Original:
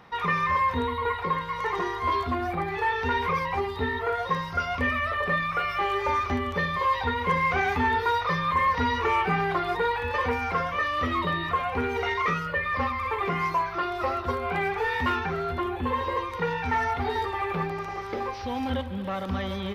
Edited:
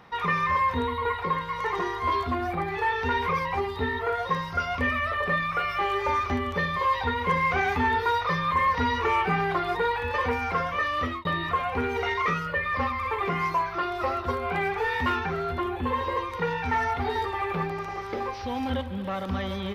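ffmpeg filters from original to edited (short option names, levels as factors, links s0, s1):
-filter_complex "[0:a]asplit=2[s0][s1];[s0]atrim=end=11.25,asetpts=PTS-STARTPTS,afade=t=out:st=10.94:d=0.31:c=qsin[s2];[s1]atrim=start=11.25,asetpts=PTS-STARTPTS,afade=t=in:d=0.004:c=hsin[s3];[s2][s3]concat=n=2:v=0:a=1"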